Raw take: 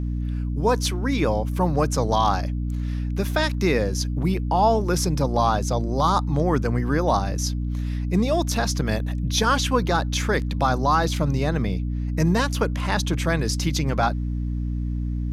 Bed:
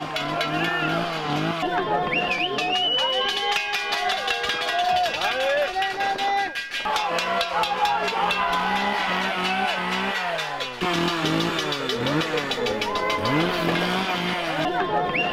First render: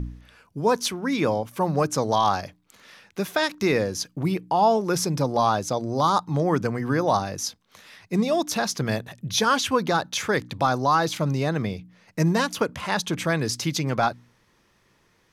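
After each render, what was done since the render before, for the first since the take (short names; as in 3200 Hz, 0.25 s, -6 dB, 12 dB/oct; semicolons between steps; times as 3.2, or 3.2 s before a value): de-hum 60 Hz, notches 5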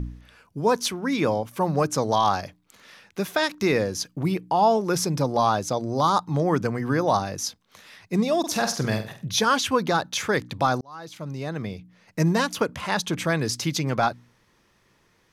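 8.39–9.25 flutter echo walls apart 8.1 m, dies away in 0.35 s; 10.81–12.19 fade in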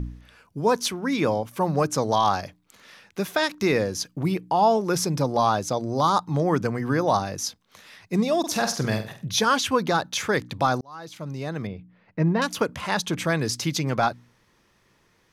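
11.67–12.42 air absorption 380 m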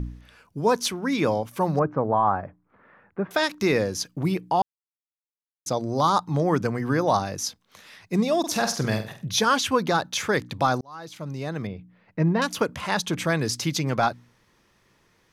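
1.79–3.31 LPF 1600 Hz 24 dB/oct; 4.62–5.66 mute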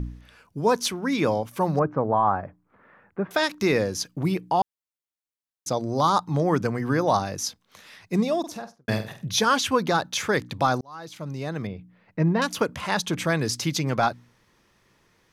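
8.13–8.88 studio fade out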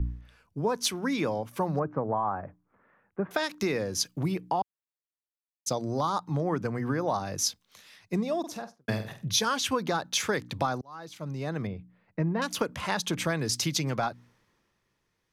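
compressor, threshold -25 dBFS, peak gain reduction 9 dB; three-band expander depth 40%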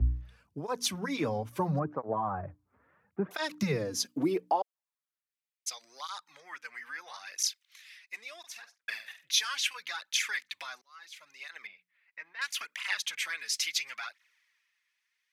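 high-pass sweep 65 Hz -> 2100 Hz, 3.32–5.39; tape flanging out of phase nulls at 0.74 Hz, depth 6.5 ms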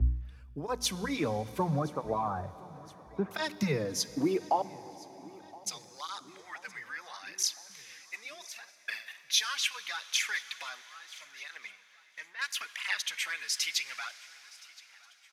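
feedback echo 1.019 s, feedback 55%, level -22.5 dB; plate-style reverb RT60 4.7 s, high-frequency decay 1×, DRR 15 dB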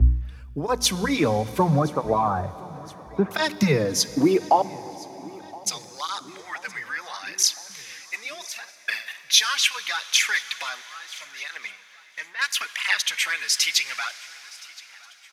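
gain +10 dB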